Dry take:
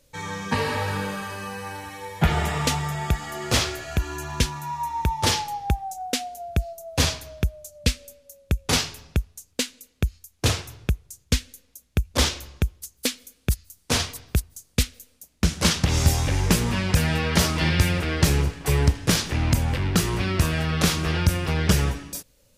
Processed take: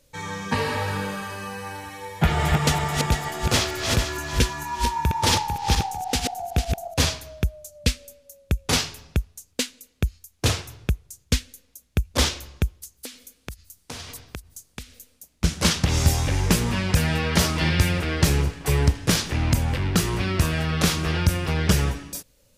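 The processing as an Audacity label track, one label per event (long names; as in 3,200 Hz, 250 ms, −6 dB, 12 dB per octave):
2.170000	6.940000	feedback delay that plays each chunk backwards 224 ms, feedback 56%, level −3 dB
12.790000	15.440000	downward compressor 12 to 1, threshold −32 dBFS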